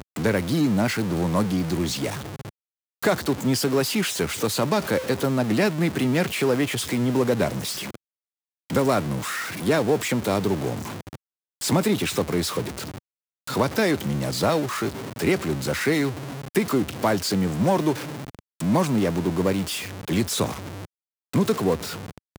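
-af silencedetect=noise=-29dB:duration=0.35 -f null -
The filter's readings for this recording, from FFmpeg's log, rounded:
silence_start: 2.49
silence_end: 3.02 | silence_duration: 0.53
silence_start: 7.95
silence_end: 8.70 | silence_duration: 0.75
silence_start: 11.15
silence_end: 11.61 | silence_duration: 0.46
silence_start: 12.98
silence_end: 13.47 | silence_duration: 0.49
silence_start: 20.85
silence_end: 21.33 | silence_duration: 0.48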